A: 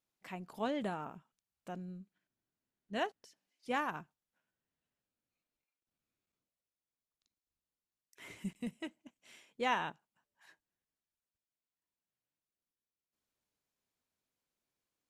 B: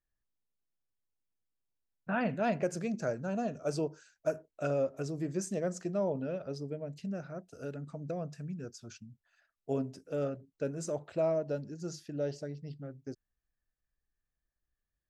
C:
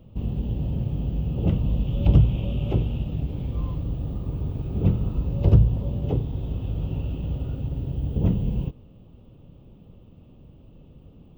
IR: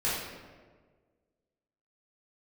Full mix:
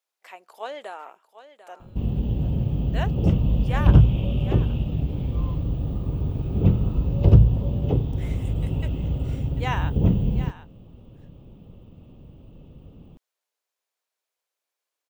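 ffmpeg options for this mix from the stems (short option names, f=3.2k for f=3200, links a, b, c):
-filter_complex "[0:a]acontrast=56,highpass=f=460:w=0.5412,highpass=f=460:w=1.3066,volume=-2dB,asplit=2[a][b];[b]volume=-14dB[c];[2:a]adelay=1800,volume=2.5dB[d];[c]aecho=0:1:745:1[e];[a][d][e]amix=inputs=3:normalize=0"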